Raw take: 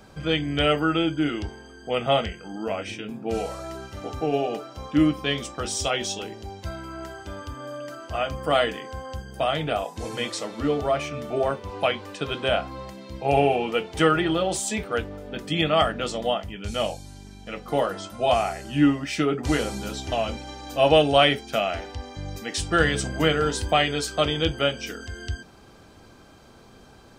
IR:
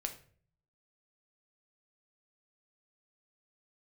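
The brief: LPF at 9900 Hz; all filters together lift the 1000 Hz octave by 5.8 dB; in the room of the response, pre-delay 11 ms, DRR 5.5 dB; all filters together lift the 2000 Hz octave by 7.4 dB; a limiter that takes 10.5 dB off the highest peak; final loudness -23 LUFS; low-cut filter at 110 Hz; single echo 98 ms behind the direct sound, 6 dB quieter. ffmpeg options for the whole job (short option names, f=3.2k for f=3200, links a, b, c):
-filter_complex "[0:a]highpass=110,lowpass=9.9k,equalizer=f=1k:t=o:g=6.5,equalizer=f=2k:t=o:g=7.5,alimiter=limit=-11dB:level=0:latency=1,aecho=1:1:98:0.501,asplit=2[a][b];[1:a]atrim=start_sample=2205,adelay=11[c];[b][c]afir=irnorm=-1:irlink=0,volume=-5.5dB[d];[a][d]amix=inputs=2:normalize=0,volume=-0.5dB"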